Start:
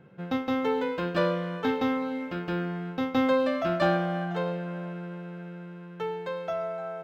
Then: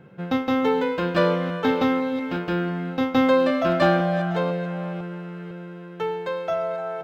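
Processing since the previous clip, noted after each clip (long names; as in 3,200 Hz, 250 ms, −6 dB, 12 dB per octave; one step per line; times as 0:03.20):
delay that plays each chunk backwards 501 ms, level −13 dB
level +5.5 dB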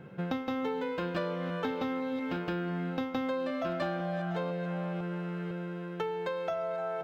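downward compressor 6 to 1, threshold −31 dBFS, peak gain reduction 16 dB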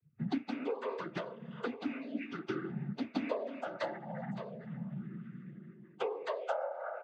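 spectral dynamics exaggerated over time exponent 3
cochlear-implant simulation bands 16
level +2 dB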